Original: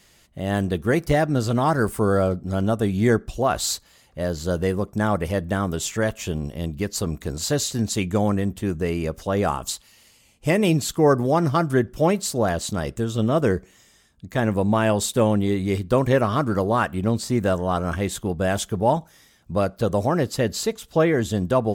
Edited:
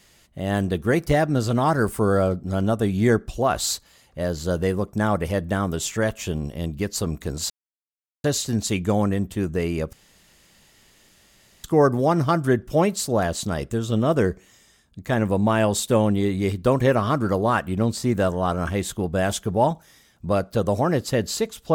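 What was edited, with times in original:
7.5 insert silence 0.74 s
9.19–10.9 room tone

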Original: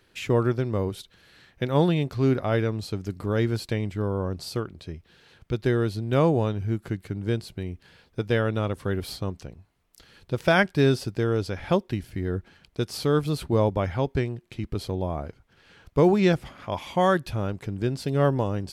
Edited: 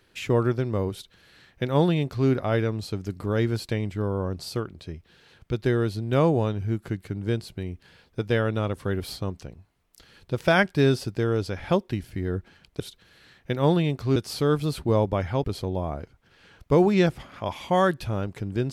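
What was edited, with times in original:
0.92–2.28 copy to 12.8
14.08–14.7 cut

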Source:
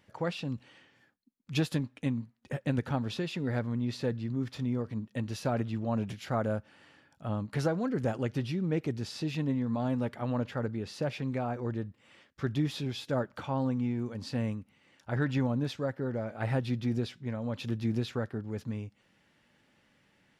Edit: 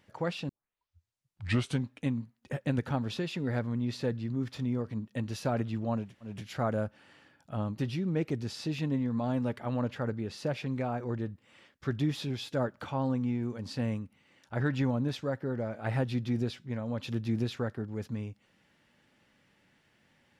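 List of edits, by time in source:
0.49 tape start 1.41 s
6.04 insert room tone 0.28 s, crossfade 0.24 s
7.5–8.34 cut

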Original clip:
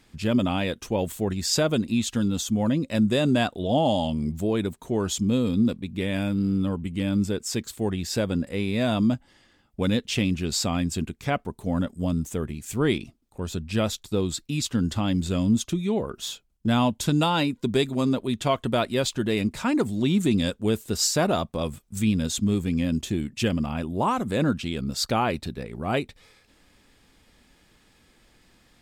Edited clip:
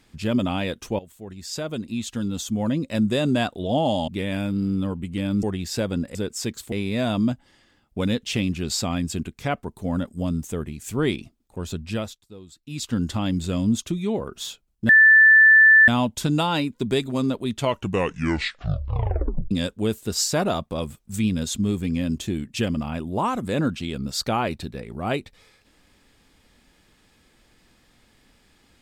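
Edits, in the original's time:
0.99–2.79 fade in, from -19 dB
4.08–5.9 cut
7.25–7.82 move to 8.54
13.67–14.75 dip -18 dB, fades 0.34 s
16.71 add tone 1760 Hz -9 dBFS 0.99 s
18.39 tape stop 1.95 s

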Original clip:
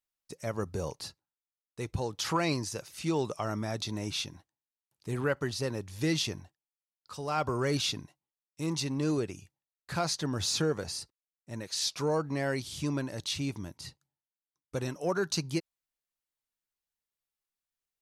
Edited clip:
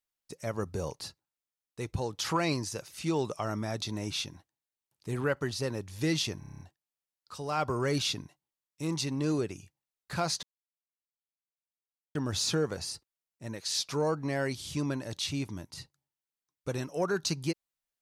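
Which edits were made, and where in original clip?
6.39 stutter 0.03 s, 8 plays
10.22 insert silence 1.72 s

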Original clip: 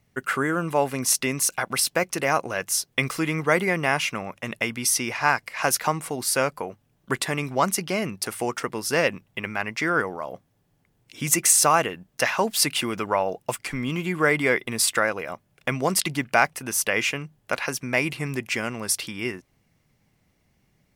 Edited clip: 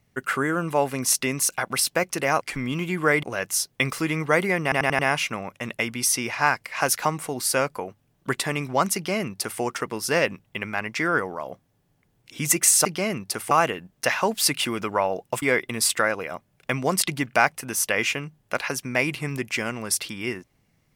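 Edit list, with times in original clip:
3.81 stutter 0.09 s, 5 plays
7.77–8.43 copy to 11.67
13.58–14.4 move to 2.41

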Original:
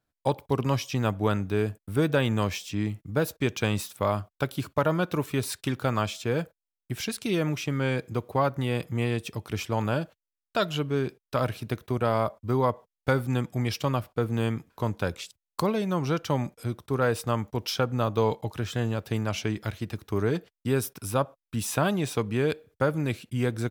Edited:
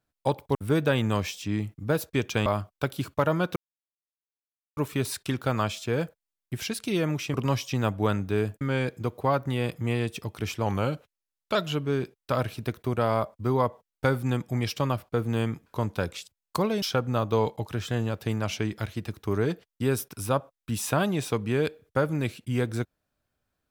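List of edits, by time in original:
0.55–1.82 move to 7.72
3.73–4.05 cut
5.15 insert silence 1.21 s
9.77–10.59 speed 92%
15.86–17.67 cut

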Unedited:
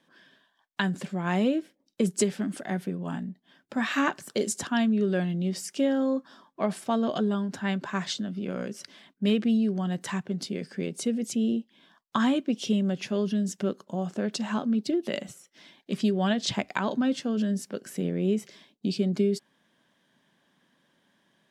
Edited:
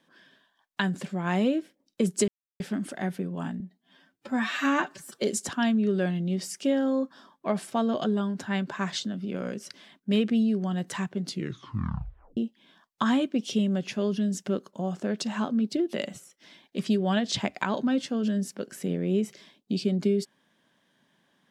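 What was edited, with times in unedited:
2.28 insert silence 0.32 s
3.28–4.36 stretch 1.5×
10.41 tape stop 1.10 s

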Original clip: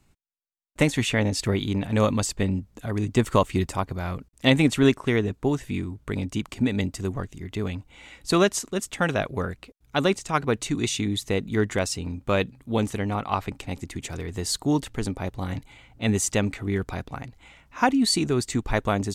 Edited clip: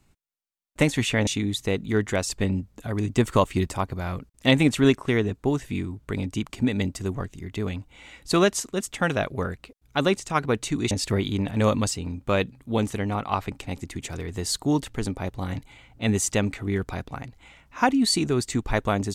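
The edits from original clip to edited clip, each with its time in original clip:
1.27–2.28 swap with 10.9–11.92

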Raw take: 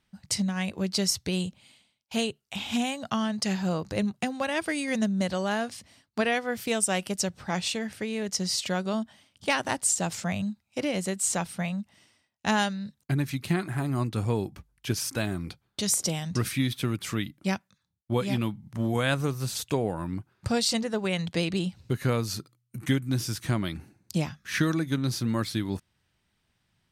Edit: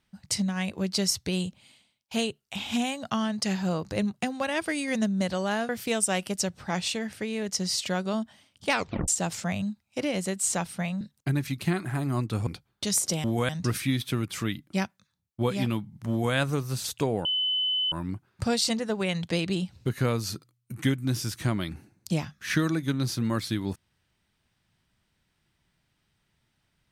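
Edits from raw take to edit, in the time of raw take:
5.69–6.49 cut
9.52 tape stop 0.36 s
11.81–12.84 cut
14.3–15.43 cut
18.81–19.06 copy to 16.2
19.96 add tone 3020 Hz -23.5 dBFS 0.67 s

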